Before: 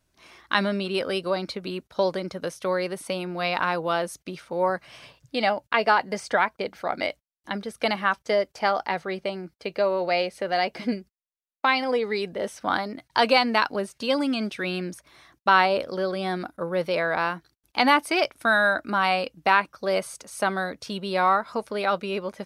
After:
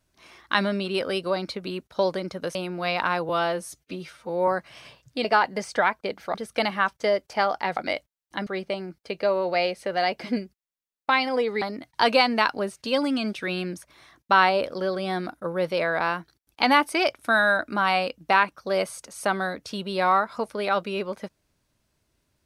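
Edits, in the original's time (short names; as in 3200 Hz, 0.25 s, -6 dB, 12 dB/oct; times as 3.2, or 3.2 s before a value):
2.55–3.12 cut
3.86–4.65 stretch 1.5×
5.42–5.8 cut
6.9–7.6 move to 9.02
12.17–12.78 cut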